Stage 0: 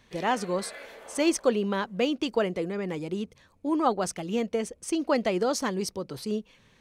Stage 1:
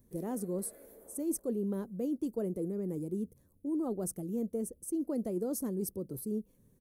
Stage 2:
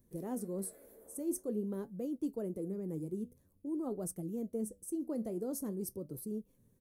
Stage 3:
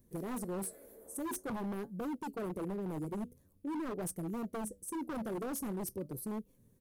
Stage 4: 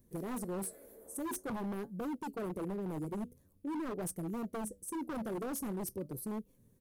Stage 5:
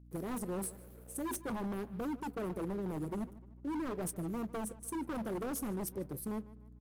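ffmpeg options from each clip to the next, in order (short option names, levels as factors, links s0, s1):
-af "firequalizer=gain_entry='entry(340,0);entry(810,-17);entry(2700,-30);entry(11000,11)':delay=0.05:min_phase=1,areverse,acompressor=threshold=0.0398:ratio=6,areverse,volume=0.794"
-af "flanger=delay=5.3:depth=8.4:regen=71:speed=0.48:shape=triangular,volume=1.12"
-af "aeval=exprs='0.0168*(abs(mod(val(0)/0.0168+3,4)-2)-1)':c=same,volume=1.33"
-af anull
-filter_complex "[0:a]aeval=exprs='sgn(val(0))*max(abs(val(0))-0.00106,0)':c=same,aeval=exprs='val(0)+0.00158*(sin(2*PI*60*n/s)+sin(2*PI*2*60*n/s)/2+sin(2*PI*3*60*n/s)/3+sin(2*PI*4*60*n/s)/4+sin(2*PI*5*60*n/s)/5)':c=same,asplit=2[s0][s1];[s1]adelay=150,lowpass=f=4100:p=1,volume=0.126,asplit=2[s2][s3];[s3]adelay=150,lowpass=f=4100:p=1,volume=0.43,asplit=2[s4][s5];[s5]adelay=150,lowpass=f=4100:p=1,volume=0.43,asplit=2[s6][s7];[s7]adelay=150,lowpass=f=4100:p=1,volume=0.43[s8];[s0][s2][s4][s6][s8]amix=inputs=5:normalize=0,volume=1.12"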